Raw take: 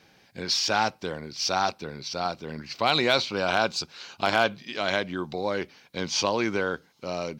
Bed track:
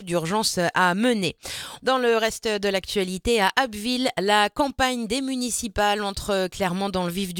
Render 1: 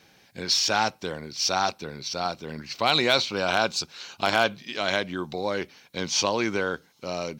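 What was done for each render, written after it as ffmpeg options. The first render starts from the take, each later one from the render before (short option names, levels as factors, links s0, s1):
-af "highshelf=f=4500:g=6,bandreject=f=4800:w=18"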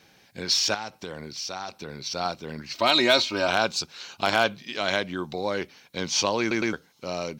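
-filter_complex "[0:a]asettb=1/sr,asplit=3[s0][s1][s2];[s0]atrim=end=0.744[s3];[s1]atrim=start=0.74:end=1.9,asetpts=PTS-STARTPTS,afade=t=in:d=0.004:c=qsin,afade=t=out:st=1.156:d=0.004:c=qsin,acompressor=threshold=0.0282:ratio=4:attack=3.2:release=140:knee=1:detection=peak[s4];[s2]atrim=start=1.896[s5];[s3][s4]acrossfade=d=0.004:c1=hsin:c2=qsin[s6];[s6][s5]acrossfade=d=0.004:c1=qsin:c2=hsin,asettb=1/sr,asplit=3[s7][s8][s9];[s7]atrim=end=2.734[s10];[s8]atrim=start=2.73:end=3.48,asetpts=PTS-STARTPTS,afade=t=in:d=0.004:c=qsin,afade=t=out:st=0.746:d=0.004:c=qsin,aecho=1:1:3.2:0.72,atrim=end_sample=33075[s11];[s9]atrim=start=3.476[s12];[s10][s11]acrossfade=d=0.004:c1=hsin:c2=qsin[s13];[s13][s12]acrossfade=d=0.004:c1=qsin:c2=hsin,asplit=4[s14][s15][s16][s17];[s14]atrim=end=6.512[s18];[s15]atrim=start=6.398:end=6.512[s19];[s16]atrim=start=6.398:end=6.512[s20];[s17]atrim=start=6.728[s21];[s18][s19]acrossfade=d=0.004:c1=hsin:c2=hsin[s22];[s22][s20]acrossfade=d=0.004:c1=hsin:c2=hsin[s23];[s23][s21]acrossfade=d=0.004:c1=hsin:c2=hsin"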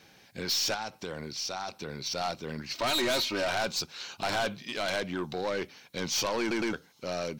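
-af "aeval=exprs='(tanh(17.8*val(0)+0.1)-tanh(0.1))/17.8':c=same"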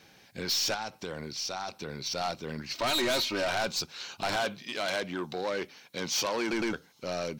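-filter_complex "[0:a]asettb=1/sr,asplit=3[s0][s1][s2];[s0]atrim=end=4.364[s3];[s1]atrim=start=4.36:end=6.53,asetpts=PTS-STARTPTS,afade=t=in:d=0.004:c=qsin,afade=t=out:st=2.166:d=0.004:c=qsin,highpass=f=170:p=1[s4];[s2]atrim=start=6.526[s5];[s3][s4]acrossfade=d=0.004:c1=hsin:c2=qsin[s6];[s6][s5]acrossfade=d=0.004:c1=qsin:c2=hsin"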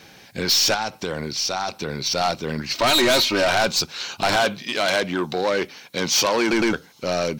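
-af "volume=3.35"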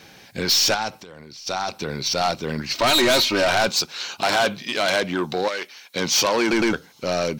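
-filter_complex "[0:a]asplit=3[s0][s1][s2];[s0]afade=t=out:st=0.98:d=0.02[s3];[s1]acompressor=threshold=0.0112:ratio=6:attack=3.2:release=140:knee=1:detection=peak,afade=t=in:st=0.98:d=0.02,afade=t=out:st=1.46:d=0.02[s4];[s2]afade=t=in:st=1.46:d=0.02[s5];[s3][s4][s5]amix=inputs=3:normalize=0,asettb=1/sr,asplit=3[s6][s7][s8];[s6]atrim=end=3.694[s9];[s7]atrim=start=3.69:end=4.4,asetpts=PTS-STARTPTS,afade=t=in:d=0.004:c=qsin,afade=t=out:st=0.706:d=0.004:c=qsin,highpass=f=250:p=1[s10];[s8]atrim=start=4.396[s11];[s9][s10]acrossfade=d=0.004:c1=hsin:c2=qsin[s12];[s12][s11]acrossfade=d=0.004:c1=qsin:c2=hsin,asettb=1/sr,asplit=3[s13][s14][s15];[s13]atrim=end=5.484[s16];[s14]atrim=start=5.48:end=5.96,asetpts=PTS-STARTPTS,afade=t=in:d=0.004:c=qsin,afade=t=out:st=0.476:d=0.004:c=qsin,highpass=f=1400:p=1[s17];[s15]atrim=start=5.956[s18];[s16][s17]acrossfade=d=0.004:c1=hsin:c2=qsin[s19];[s19][s18]acrossfade=d=0.004:c1=qsin:c2=hsin"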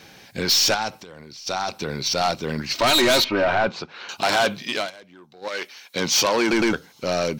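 -filter_complex "[0:a]asettb=1/sr,asplit=3[s0][s1][s2];[s0]atrim=end=3.244[s3];[s1]atrim=start=3.24:end=4.09,asetpts=PTS-STARTPTS,afade=t=in:d=0.004:c=qsin,afade=t=out:st=0.846:d=0.004:c=qsin,lowpass=2000[s4];[s2]atrim=start=4.086[s5];[s3][s4]acrossfade=d=0.004:c1=hsin:c2=qsin[s6];[s6][s5]acrossfade=d=0.004:c1=qsin:c2=hsin,asplit=3[s7][s8][s9];[s7]atrim=end=4.91,asetpts=PTS-STARTPTS,afade=t=out:st=4.76:d=0.15:silence=0.0668344[s10];[s8]atrim=start=4.91:end=5.41,asetpts=PTS-STARTPTS,volume=0.0668[s11];[s9]atrim=start=5.41,asetpts=PTS-STARTPTS,afade=t=in:d=0.15:silence=0.0668344[s12];[s10][s11][s12]concat=n=3:v=0:a=1"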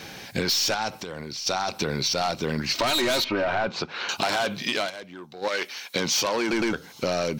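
-filter_complex "[0:a]asplit=2[s0][s1];[s1]alimiter=limit=0.126:level=0:latency=1,volume=1.12[s2];[s0][s2]amix=inputs=2:normalize=0,acompressor=threshold=0.0708:ratio=6"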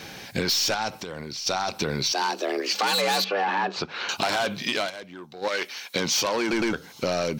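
-filter_complex "[0:a]asettb=1/sr,asplit=3[s0][s1][s2];[s0]atrim=end=2.124[s3];[s1]atrim=start=2.12:end=3.76,asetpts=PTS-STARTPTS,afade=t=in:d=0.004:c=qsin,afade=t=out:st=1.636:d=0.004:c=qsin,afreqshift=190[s4];[s2]atrim=start=3.756[s5];[s3][s4]acrossfade=d=0.004:c1=hsin:c2=qsin[s6];[s6][s5]acrossfade=d=0.004:c1=qsin:c2=hsin"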